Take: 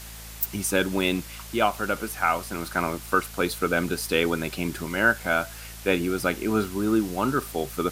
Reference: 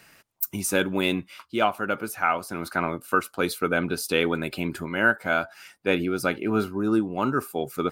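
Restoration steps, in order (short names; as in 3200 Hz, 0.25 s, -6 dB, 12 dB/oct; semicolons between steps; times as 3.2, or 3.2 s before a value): de-hum 55.4 Hz, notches 4; denoiser 12 dB, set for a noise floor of -40 dBFS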